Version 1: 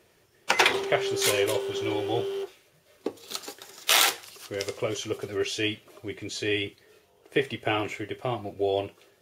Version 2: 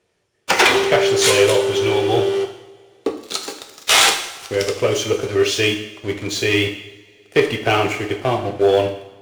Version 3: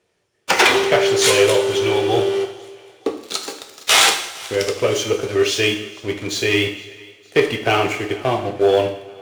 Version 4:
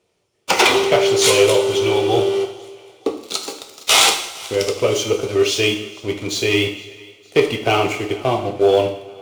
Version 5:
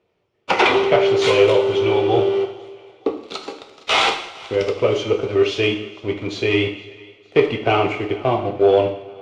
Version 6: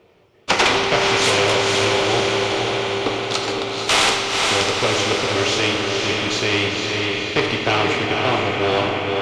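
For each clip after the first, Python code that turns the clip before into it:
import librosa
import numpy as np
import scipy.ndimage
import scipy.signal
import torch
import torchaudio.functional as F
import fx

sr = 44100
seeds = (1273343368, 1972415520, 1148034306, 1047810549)

y1 = scipy.signal.sosfilt(scipy.signal.butter(4, 10000.0, 'lowpass', fs=sr, output='sos'), x)
y1 = fx.leveller(y1, sr, passes=3)
y1 = fx.rev_double_slope(y1, sr, seeds[0], early_s=0.79, late_s=2.9, knee_db=-21, drr_db=4.0)
y1 = y1 * librosa.db_to_amplitude(-1.0)
y2 = fx.low_shelf(y1, sr, hz=110.0, db=-4.0)
y2 = fx.echo_thinned(y2, sr, ms=461, feedback_pct=51, hz=380.0, wet_db=-23.0)
y3 = fx.peak_eq(y2, sr, hz=1700.0, db=-11.0, octaves=0.33)
y3 = y3 * librosa.db_to_amplitude(1.0)
y4 = scipy.signal.sosfilt(scipy.signal.butter(2, 2700.0, 'lowpass', fs=sr, output='sos'), y3)
y5 = fx.echo_diffused(y4, sr, ms=495, feedback_pct=53, wet_db=-5.0)
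y5 = fx.spectral_comp(y5, sr, ratio=2.0)
y5 = y5 * librosa.db_to_amplitude(-1.5)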